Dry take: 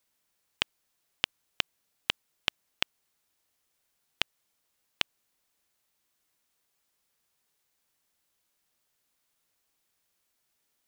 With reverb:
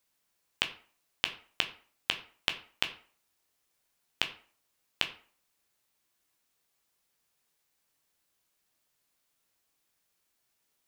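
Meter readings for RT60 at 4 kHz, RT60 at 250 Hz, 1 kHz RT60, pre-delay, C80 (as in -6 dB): 0.30 s, 0.45 s, 0.45 s, 10 ms, 17.0 dB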